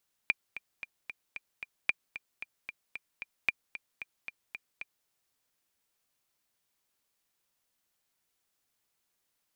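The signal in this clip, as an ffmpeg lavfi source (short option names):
-f lavfi -i "aevalsrc='pow(10,(-12-14*gte(mod(t,6*60/226),60/226))/20)*sin(2*PI*2390*mod(t,60/226))*exp(-6.91*mod(t,60/226)/0.03)':d=4.77:s=44100"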